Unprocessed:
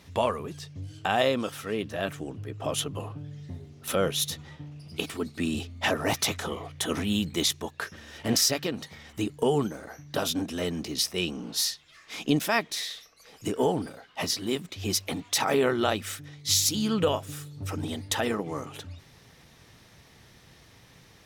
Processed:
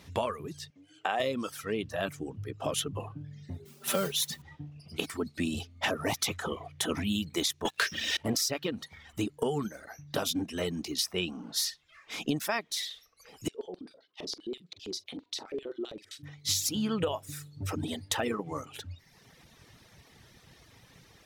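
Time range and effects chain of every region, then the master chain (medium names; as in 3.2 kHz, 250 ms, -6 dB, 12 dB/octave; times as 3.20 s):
0.70–1.20 s: band-pass 360–7900 Hz + peaking EQ 4.7 kHz -6.5 dB 0.94 oct
3.65–4.42 s: high-pass 91 Hz + comb 5.1 ms, depth 91% + modulation noise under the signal 11 dB
7.65–8.17 s: frequency weighting D + waveshaping leveller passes 3
13.48–16.23 s: compression 5:1, threshold -28 dBFS + LFO band-pass square 7.6 Hz 370–4100 Hz + doubling 45 ms -11 dB
whole clip: reverb removal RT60 0.95 s; compression, threshold -26 dBFS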